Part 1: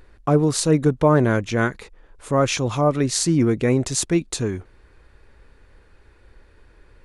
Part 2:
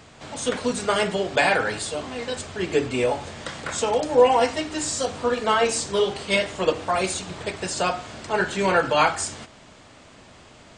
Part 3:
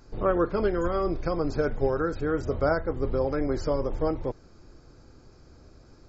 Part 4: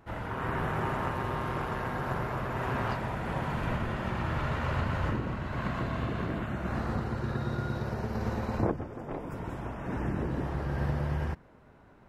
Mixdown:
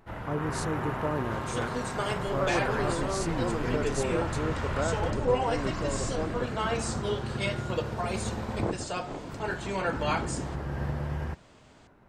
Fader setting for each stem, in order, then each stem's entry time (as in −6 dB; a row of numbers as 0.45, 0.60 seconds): −15.5, −10.5, −6.5, −1.5 decibels; 0.00, 1.10, 2.15, 0.00 seconds